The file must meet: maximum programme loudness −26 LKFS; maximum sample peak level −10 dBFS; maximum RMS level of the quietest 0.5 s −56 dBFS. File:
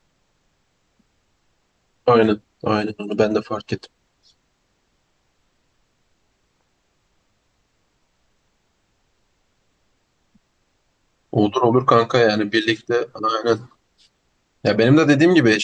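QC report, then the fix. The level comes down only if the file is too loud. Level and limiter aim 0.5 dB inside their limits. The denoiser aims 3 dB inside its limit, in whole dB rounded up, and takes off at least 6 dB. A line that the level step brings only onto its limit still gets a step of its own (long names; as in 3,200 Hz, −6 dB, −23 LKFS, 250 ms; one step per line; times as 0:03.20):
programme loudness −18.5 LKFS: out of spec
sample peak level −4.0 dBFS: out of spec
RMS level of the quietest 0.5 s −67 dBFS: in spec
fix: level −8 dB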